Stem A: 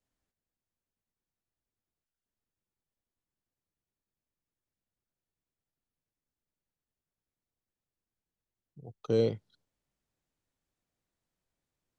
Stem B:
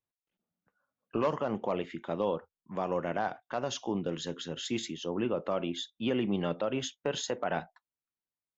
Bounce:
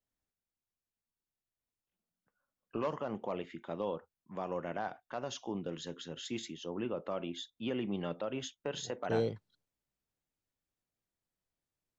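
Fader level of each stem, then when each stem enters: -5.5, -6.0 dB; 0.00, 1.60 s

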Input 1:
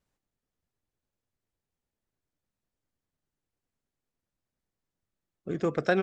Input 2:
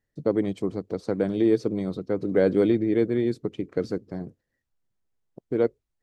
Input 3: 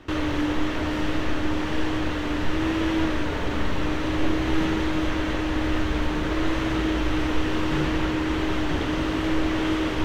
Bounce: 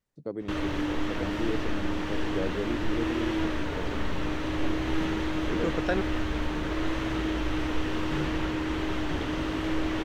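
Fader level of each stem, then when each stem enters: -3.5, -11.5, -5.0 dB; 0.00, 0.00, 0.40 s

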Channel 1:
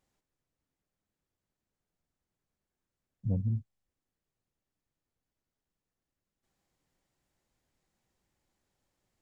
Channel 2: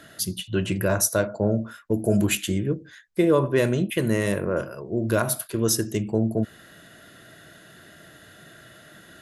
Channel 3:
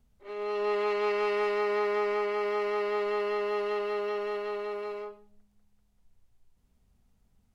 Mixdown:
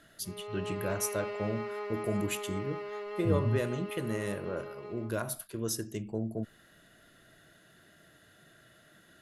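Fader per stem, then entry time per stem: +0.5, -11.5, -10.0 dB; 0.00, 0.00, 0.00 s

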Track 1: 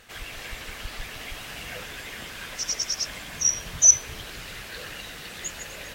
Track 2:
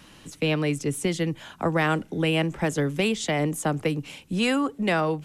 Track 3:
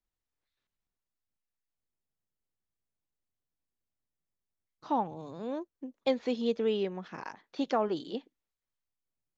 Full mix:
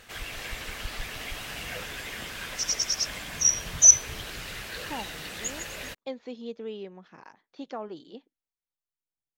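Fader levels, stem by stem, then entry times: +0.5 dB, off, -8.0 dB; 0.00 s, off, 0.00 s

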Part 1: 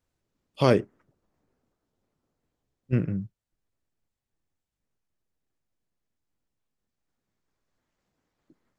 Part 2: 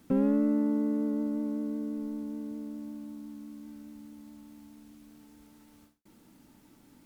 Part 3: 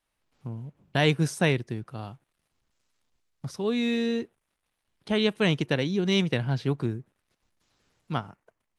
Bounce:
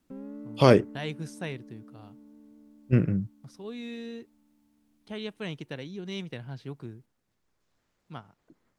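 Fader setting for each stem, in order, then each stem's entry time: +2.5, -16.0, -12.5 dB; 0.00, 0.00, 0.00 s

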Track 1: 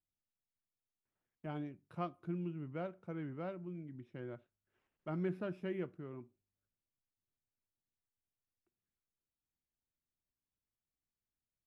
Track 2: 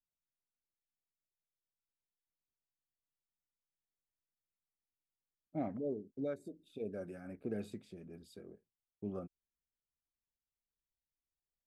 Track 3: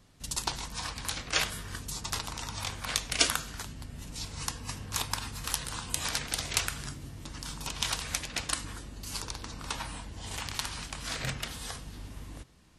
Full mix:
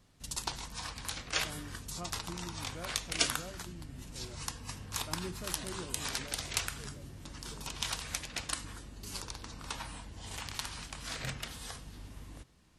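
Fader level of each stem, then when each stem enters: -5.0, -14.0, -4.5 dB; 0.00, 0.00, 0.00 s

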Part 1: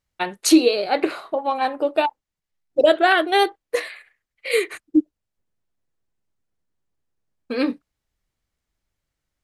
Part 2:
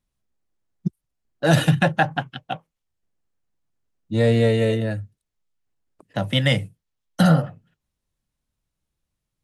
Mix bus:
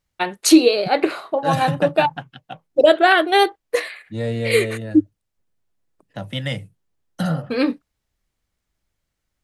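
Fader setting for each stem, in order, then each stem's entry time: +2.5, -6.5 dB; 0.00, 0.00 s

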